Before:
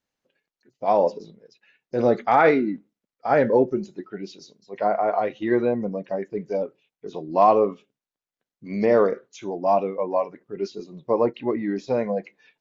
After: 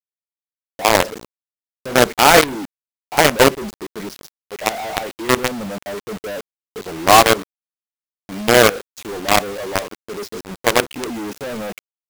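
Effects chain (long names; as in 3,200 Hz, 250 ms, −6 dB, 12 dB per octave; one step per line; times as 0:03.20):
wrong playback speed 24 fps film run at 25 fps
log-companded quantiser 2 bits
level −1 dB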